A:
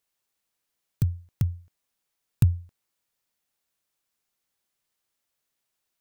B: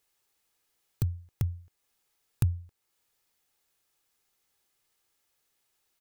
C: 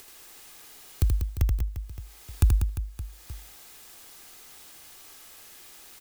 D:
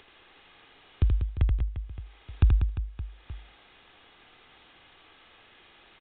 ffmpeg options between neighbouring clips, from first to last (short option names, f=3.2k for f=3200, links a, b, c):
-af "aecho=1:1:2.4:0.31,acompressor=threshold=-47dB:ratio=1.5,volume=4.5dB"
-af "acompressor=mode=upward:threshold=-40dB:ratio=2.5,afreqshift=-36,aecho=1:1:80|192|348.8|568.3|875.6:0.631|0.398|0.251|0.158|0.1,volume=6dB"
-af "aresample=8000,aresample=44100"